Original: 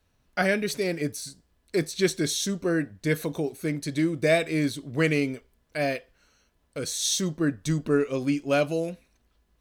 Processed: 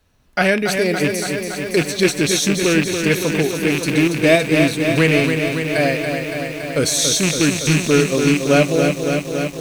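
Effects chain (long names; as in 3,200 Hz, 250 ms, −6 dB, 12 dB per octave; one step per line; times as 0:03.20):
loose part that buzzes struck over −30 dBFS, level −19 dBFS
camcorder AGC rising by 7.7 dB per second
feedback echo at a low word length 282 ms, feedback 80%, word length 8 bits, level −6 dB
level +7.5 dB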